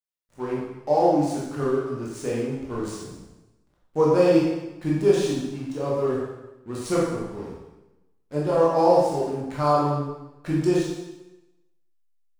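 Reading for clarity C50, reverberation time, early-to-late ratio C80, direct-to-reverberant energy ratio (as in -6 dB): 0.0 dB, 0.95 s, 3.0 dB, -6.0 dB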